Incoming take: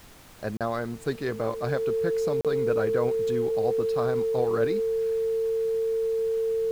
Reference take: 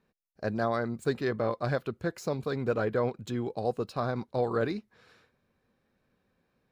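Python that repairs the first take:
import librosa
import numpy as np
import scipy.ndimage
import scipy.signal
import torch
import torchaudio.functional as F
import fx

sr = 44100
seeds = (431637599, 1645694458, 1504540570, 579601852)

y = fx.notch(x, sr, hz=450.0, q=30.0)
y = fx.fix_interpolate(y, sr, at_s=(0.57, 2.41), length_ms=37.0)
y = fx.noise_reduce(y, sr, print_start_s=0.0, print_end_s=0.5, reduce_db=30.0)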